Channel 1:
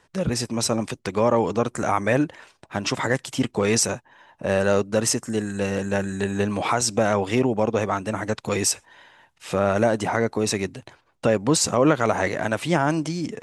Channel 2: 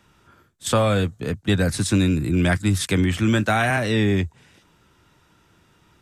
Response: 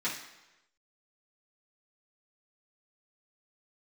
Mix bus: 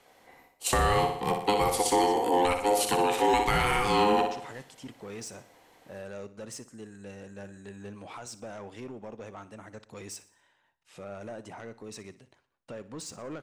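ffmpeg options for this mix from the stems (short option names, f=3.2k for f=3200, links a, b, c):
-filter_complex "[0:a]asoftclip=type=tanh:threshold=-15dB,adelay=1450,volume=-18.5dB,asplit=2[a][b];[b]volume=-16.5dB[c];[1:a]equalizer=f=12k:t=o:w=0.66:g=7,aeval=exprs='val(0)*sin(2*PI*620*n/s)':c=same,volume=0.5dB,asplit=2[d][e];[e]volume=-7dB[f];[c][f]amix=inputs=2:normalize=0,aecho=0:1:60|120|180|240|300|360|420:1|0.5|0.25|0.125|0.0625|0.0312|0.0156[g];[a][d][g]amix=inputs=3:normalize=0,alimiter=limit=-14dB:level=0:latency=1:release=371"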